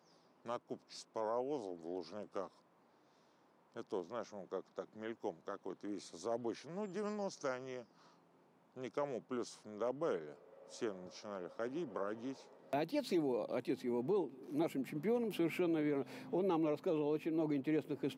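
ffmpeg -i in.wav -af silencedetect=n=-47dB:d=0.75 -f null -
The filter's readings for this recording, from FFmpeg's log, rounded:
silence_start: 2.47
silence_end: 3.76 | silence_duration: 1.29
silence_start: 7.82
silence_end: 8.77 | silence_duration: 0.94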